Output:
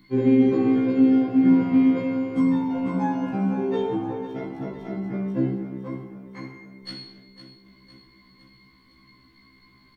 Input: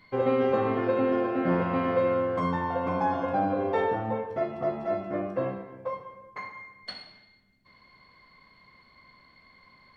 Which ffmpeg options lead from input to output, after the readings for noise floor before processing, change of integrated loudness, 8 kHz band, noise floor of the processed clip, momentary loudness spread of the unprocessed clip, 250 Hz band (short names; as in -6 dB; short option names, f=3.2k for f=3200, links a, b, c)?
-60 dBFS, +5.5 dB, n/a, -57 dBFS, 15 LU, +11.5 dB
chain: -filter_complex "[0:a]crystalizer=i=2.5:c=0,lowshelf=f=420:t=q:w=3:g=8.5,asplit=2[a][b];[b]aecho=0:1:507|1014|1521|2028|2535|3042:0.251|0.138|0.076|0.0418|0.023|0.0126[c];[a][c]amix=inputs=2:normalize=0,afftfilt=real='re*1.73*eq(mod(b,3),0)':imag='im*1.73*eq(mod(b,3),0)':win_size=2048:overlap=0.75,volume=-1.5dB"